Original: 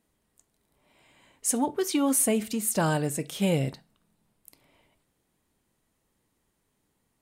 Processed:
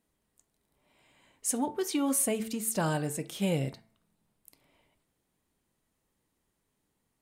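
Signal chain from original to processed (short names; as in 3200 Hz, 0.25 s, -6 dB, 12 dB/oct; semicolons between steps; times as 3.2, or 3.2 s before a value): de-hum 111.1 Hz, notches 21; gain -4 dB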